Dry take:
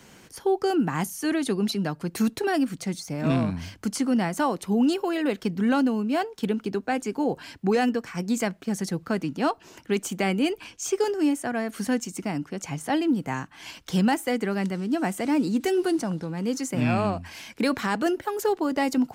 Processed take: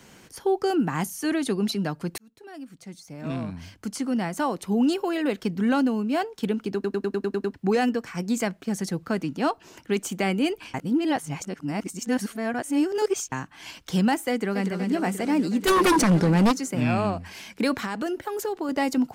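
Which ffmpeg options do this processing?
-filter_complex "[0:a]asplit=2[s0][s1];[s1]afade=t=in:st=14.31:d=0.01,afade=t=out:st=14.75:d=0.01,aecho=0:1:240|480|720|960|1200|1440|1680|1920|2160|2400|2640|2880:0.421697|0.316272|0.237204|0.177903|0.133427|0.100071|0.0750529|0.0562897|0.0422173|0.0316629|0.0237472|0.0178104[s2];[s0][s2]amix=inputs=2:normalize=0,asplit=3[s3][s4][s5];[s3]afade=t=out:st=15.66:d=0.02[s6];[s4]aeval=exprs='0.188*sin(PI/2*3.16*val(0)/0.188)':c=same,afade=t=in:st=15.66:d=0.02,afade=t=out:st=16.51:d=0.02[s7];[s5]afade=t=in:st=16.51:d=0.02[s8];[s6][s7][s8]amix=inputs=3:normalize=0,asettb=1/sr,asplit=3[s9][s10][s11];[s9]atrim=end=17.754[s12];[s10]atrim=start=17.75:end=18.69,asetpts=PTS-STARTPTS,afade=t=in:d=0.004:c=qsin,afade=t=out:st=0.936:d=0.004:c=qsin,acompressor=threshold=0.0631:ratio=6:attack=3.2:release=140:knee=1:detection=peak[s13];[s11]atrim=start=18.686[s14];[s12][s13]acrossfade=d=0.004:c1=hsin:c2=qsin[s15];[s15][s14]acrossfade=d=0.004:c1=qsin:c2=hsin,asplit=12[s16][s17][s18][s19][s20][s21][s22][s23][s24][s25][s26][s27];[s16]atrim=end=2.18,asetpts=PTS-STARTPTS,afade=t=out:st=2.176:d=0.004:c=hsin[s28];[s17]atrim=start=2.18:end=6.842,asetpts=PTS-STARTPTS,afade=t=in:d=2.69[s29];[s18]atrim=start=6.738:end=6.842[s30];[s19]atrim=start=6.738:end=6.842[s31];[s20]atrim=start=6.738:end=6.842[s32];[s21]atrim=start=6.738:end=6.842[s33];[s22]atrim=start=6.738:end=6.842[s34];[s23]atrim=start=6.738:end=6.842[s35];[s24]atrim=start=6.738:end=6.842[s36];[s25]atrim=start=7.538:end=10.742[s37];[s26]atrim=start=10.738:end=13.322,asetpts=PTS-STARTPTS,areverse[s38];[s27]atrim=start=13.318[s39];[s28][s29]concat=n=2:v=0:a=1[s40];[s40][s30]acrossfade=d=0.004:c1=hsin:c2=hsin[s41];[s41][s31]acrossfade=d=0.004:c1=hsin:c2=hsin[s42];[s42][s32]acrossfade=d=0.004:c1=hsin:c2=hsin[s43];[s43][s33]acrossfade=d=0.004:c1=hsin:c2=hsin[s44];[s44][s34]acrossfade=d=0.004:c1=hsin:c2=hsin[s45];[s45][s35]acrossfade=d=0.004:c1=hsin:c2=hsin[s46];[s46][s36]acrossfade=d=0.004:c1=hsin:c2=hsin[s47];[s47][s37]acrossfade=d=0.004:c1=hsin:c2=hsin[s48];[s48][s38]acrossfade=d=0.004:c1=hsin:c2=hsin[s49];[s49][s39]acrossfade=d=0.004:c1=hsin:c2=hsin"

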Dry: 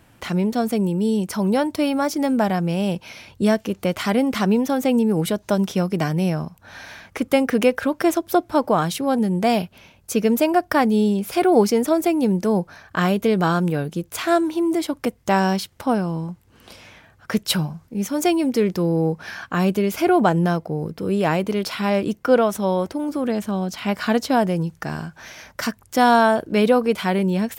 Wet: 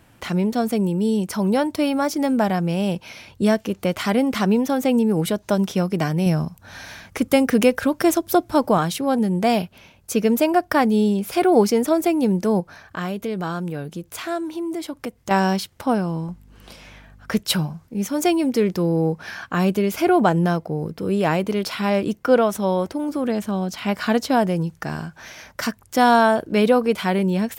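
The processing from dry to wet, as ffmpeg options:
-filter_complex "[0:a]asettb=1/sr,asplit=3[s0][s1][s2];[s0]atrim=end=6.264[s3];[s1]atrim=start=6.26:end=8.78,asetpts=PTS-STARTPTS,afade=t=in:d=0.004:c=qsin,afade=t=out:st=2.516:d=0.004:c=qsin,bass=f=250:g=5,treble=f=4000:g=5[s4];[s2]atrim=start=8.776[s5];[s3][s4]acrossfade=d=0.004:c1=hsin:c2=qsin[s6];[s6][s5]acrossfade=d=0.004:c1=qsin:c2=hsin,asettb=1/sr,asplit=3[s7][s8][s9];[s7]atrim=end=12.604[s10];[s8]atrim=start=12.6:end=15.31,asetpts=PTS-STARTPTS,afade=t=in:d=0.004:c=qsin,afade=t=out:st=2.706:d=0.004:c=qsin,acompressor=threshold=0.0158:ratio=1.5:attack=3.2:release=140:knee=1:detection=peak[s11];[s9]atrim=start=15.306[s12];[s10][s11]acrossfade=d=0.004:c1=hsin:c2=qsin[s13];[s13][s12]acrossfade=d=0.004:c1=qsin:c2=hsin,asettb=1/sr,asplit=3[s14][s15][s16];[s14]atrim=end=16.284[s17];[s15]atrim=start=16.28:end=17.41,asetpts=PTS-STARTPTS,afade=t=in:d=0.004:c=qsin,afade=t=out:st=1.126:d=0.004:c=qsin,aeval=exprs='val(0)+0.00447*(sin(2*PI*50*n/s)+sin(2*PI*2*50*n/s)/2+sin(2*PI*3*50*n/s)/3+sin(2*PI*4*50*n/s)/4+sin(2*PI*5*50*n/s)/5)':c=same[s18];[s16]atrim=start=17.406[s19];[s17][s18]acrossfade=d=0.004:c1=hsin:c2=qsin[s20];[s20][s19]acrossfade=d=0.004:c1=qsin:c2=hsin"

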